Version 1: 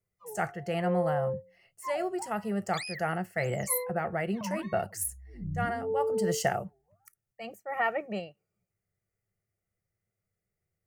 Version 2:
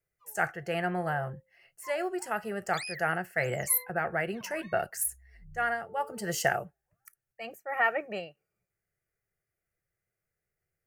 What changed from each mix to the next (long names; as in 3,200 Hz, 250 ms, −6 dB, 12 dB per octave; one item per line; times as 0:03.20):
background: add guitar amp tone stack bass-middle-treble 10-0-10
master: add thirty-one-band graphic EQ 100 Hz −10 dB, 200 Hz −9 dB, 1,600 Hz +9 dB, 2,500 Hz +4 dB, 12,500 Hz +6 dB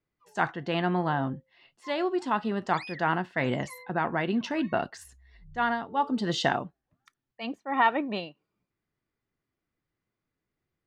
speech: remove phaser with its sweep stopped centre 1,000 Hz, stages 6
master: add high-frequency loss of the air 140 metres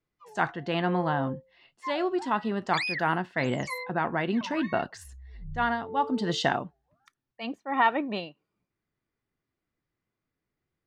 background +11.5 dB